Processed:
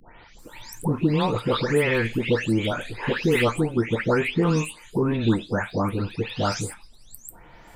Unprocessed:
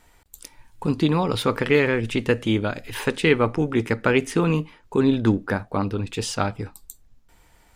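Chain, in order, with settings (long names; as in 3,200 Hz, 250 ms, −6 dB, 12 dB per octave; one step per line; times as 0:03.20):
every frequency bin delayed by itself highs late, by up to 387 ms
multiband upward and downward compressor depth 40%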